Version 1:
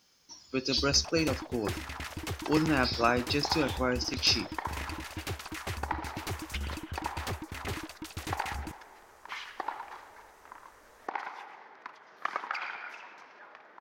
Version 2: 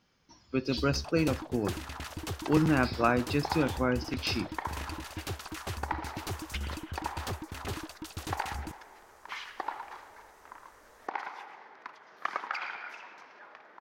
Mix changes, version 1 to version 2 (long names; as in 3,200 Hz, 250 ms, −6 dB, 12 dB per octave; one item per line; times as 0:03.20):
speech: add bass and treble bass +6 dB, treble −15 dB
first sound: add parametric band 2,100 Hz −6 dB 0.55 octaves